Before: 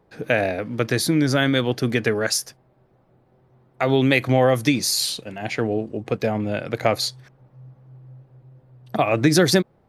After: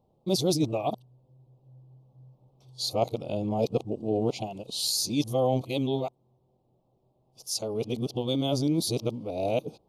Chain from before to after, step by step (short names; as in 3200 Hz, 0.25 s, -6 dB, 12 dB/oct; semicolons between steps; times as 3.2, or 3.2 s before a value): whole clip reversed; vocal rider 2 s; Chebyshev band-stop 880–3300 Hz, order 2; gain -6.5 dB